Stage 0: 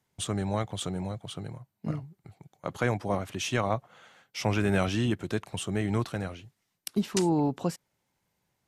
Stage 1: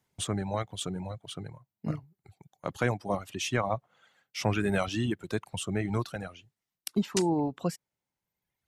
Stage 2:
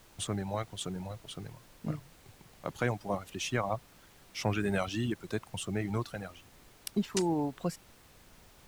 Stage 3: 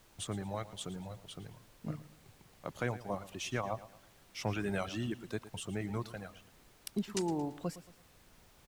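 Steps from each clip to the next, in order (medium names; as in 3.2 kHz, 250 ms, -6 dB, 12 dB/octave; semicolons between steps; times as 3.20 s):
reverb removal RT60 1.4 s
added noise pink -55 dBFS; trim -3 dB
feedback delay 113 ms, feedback 40%, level -16 dB; trim -4.5 dB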